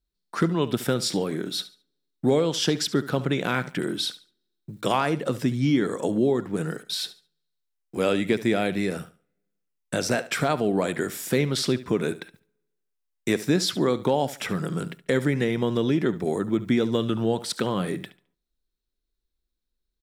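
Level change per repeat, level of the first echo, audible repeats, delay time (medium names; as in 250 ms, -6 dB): -11.5 dB, -16.0 dB, 2, 71 ms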